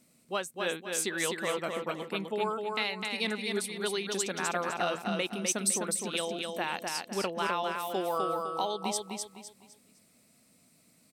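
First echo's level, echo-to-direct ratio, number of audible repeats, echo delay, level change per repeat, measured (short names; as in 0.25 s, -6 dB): -4.0 dB, -3.5 dB, 4, 0.254 s, -9.5 dB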